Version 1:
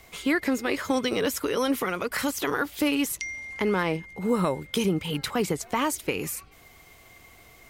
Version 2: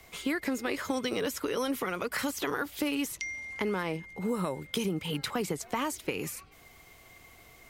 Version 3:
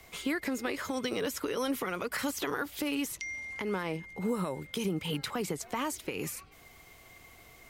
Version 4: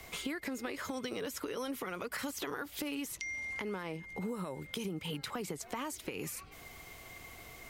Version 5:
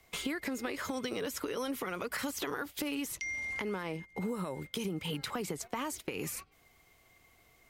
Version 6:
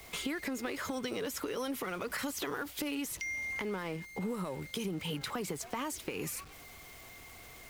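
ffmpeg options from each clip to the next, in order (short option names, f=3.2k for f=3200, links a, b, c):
-filter_complex "[0:a]acrossover=split=91|6200[a][b][c];[a]acompressor=threshold=-57dB:ratio=4[d];[b]acompressor=threshold=-25dB:ratio=4[e];[c]acompressor=threshold=-38dB:ratio=4[f];[d][e][f]amix=inputs=3:normalize=0,volume=-2.5dB"
-af "alimiter=limit=-22dB:level=0:latency=1:release=129"
-af "acompressor=threshold=-43dB:ratio=3,volume=4dB"
-af "agate=range=-16dB:threshold=-45dB:ratio=16:detection=peak,volume=2.5dB"
-af "aeval=exprs='val(0)+0.5*0.00531*sgn(val(0))':c=same,volume=-1.5dB"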